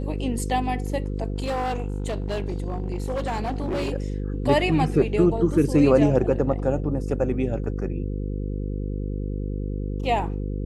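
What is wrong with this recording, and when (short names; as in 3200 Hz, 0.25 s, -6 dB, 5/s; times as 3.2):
buzz 50 Hz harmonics 10 -28 dBFS
1.36–3.94 clipped -22.5 dBFS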